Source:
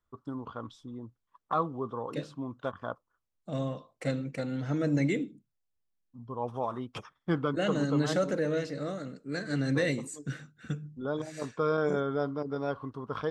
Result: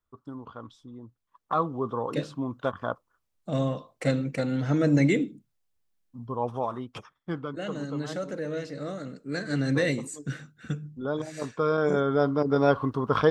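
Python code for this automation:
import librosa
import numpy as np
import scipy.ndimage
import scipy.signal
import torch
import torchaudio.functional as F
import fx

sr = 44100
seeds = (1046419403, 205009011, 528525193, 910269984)

y = fx.gain(x, sr, db=fx.line((1.0, -2.0), (1.93, 6.0), (6.32, 6.0), (7.46, -5.0), (8.22, -5.0), (9.18, 3.0), (11.77, 3.0), (12.62, 11.5)))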